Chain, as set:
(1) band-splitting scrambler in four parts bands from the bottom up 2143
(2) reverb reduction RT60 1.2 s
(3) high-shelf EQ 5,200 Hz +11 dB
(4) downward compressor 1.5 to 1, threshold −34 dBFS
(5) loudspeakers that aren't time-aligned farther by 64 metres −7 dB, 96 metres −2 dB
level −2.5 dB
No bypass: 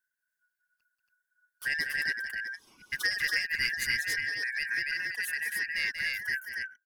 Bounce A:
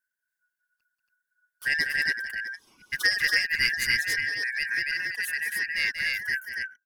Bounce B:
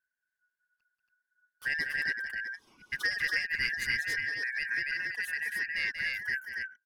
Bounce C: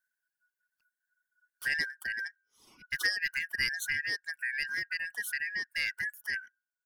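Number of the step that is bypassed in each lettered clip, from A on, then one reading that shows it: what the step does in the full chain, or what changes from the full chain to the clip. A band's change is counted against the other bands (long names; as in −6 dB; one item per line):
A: 4, average gain reduction 3.5 dB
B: 3, 8 kHz band −7.5 dB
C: 5, echo-to-direct ratio −1.0 dB to none audible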